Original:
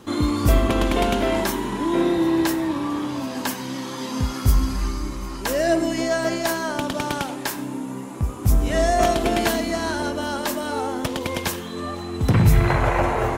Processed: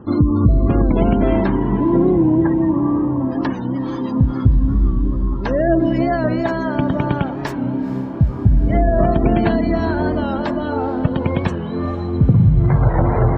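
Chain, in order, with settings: high-pass 110 Hz 6 dB/octave; RIAA curve playback; spectral gate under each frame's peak -30 dB strong; dynamic bell 150 Hz, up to +7 dB, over -28 dBFS, Q 1.5; compression, threshold -12 dBFS, peak gain reduction 14 dB; echo that smears into a reverb 456 ms, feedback 66%, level -15 dB; warped record 45 rpm, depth 100 cents; trim +2 dB

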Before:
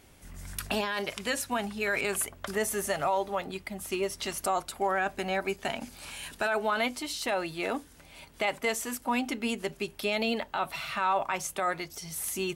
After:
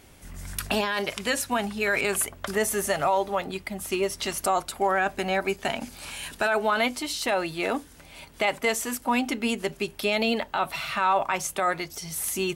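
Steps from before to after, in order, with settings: trim +4.5 dB

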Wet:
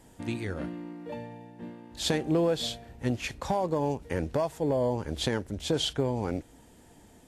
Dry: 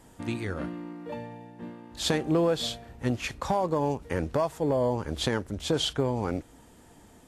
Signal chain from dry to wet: peaking EQ 1.2 kHz -5.5 dB 0.53 oct; trim -1 dB

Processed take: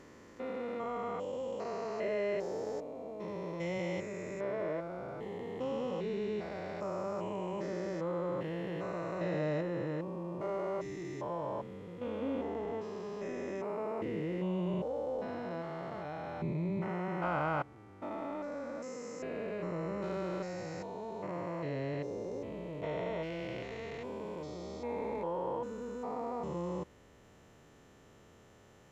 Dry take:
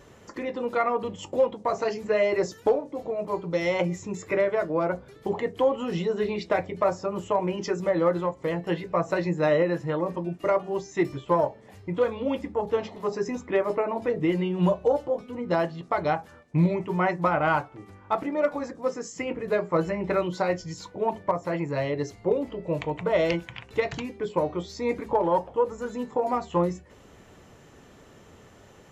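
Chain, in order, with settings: spectrogram pixelated in time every 400 ms; 12.21–12.79 s: small resonant body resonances 290/700/2000 Hz, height 8 dB; trim -6.5 dB

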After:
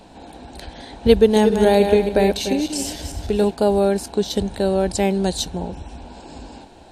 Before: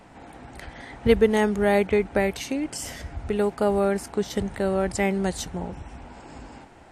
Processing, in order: 1.21–3.51 s: backward echo that repeats 147 ms, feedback 45%, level -6.5 dB; graphic EQ with 31 bands 125 Hz -11 dB, 1.25 kHz -12 dB, 2 kHz -12 dB, 4 kHz +9 dB; trim +5.5 dB

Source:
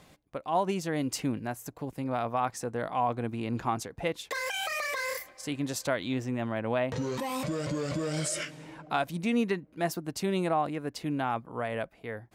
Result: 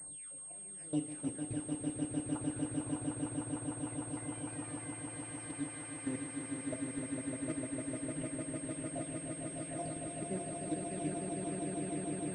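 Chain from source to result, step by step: delay that grows with frequency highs early, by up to 538 ms; reverse; compression 6:1, threshold -39 dBFS, peak gain reduction 15.5 dB; reverse; peak limiter -40 dBFS, peak gain reduction 10 dB; level held to a coarse grid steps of 23 dB; rotary cabinet horn 0.6 Hz; on a send: echo with a slow build-up 151 ms, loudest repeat 8, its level -4 dB; on the sum: FDN reverb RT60 0.41 s, low-frequency decay 0.7×, high-frequency decay 0.85×, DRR 5 dB; class-D stage that switches slowly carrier 8.5 kHz; trim +11 dB

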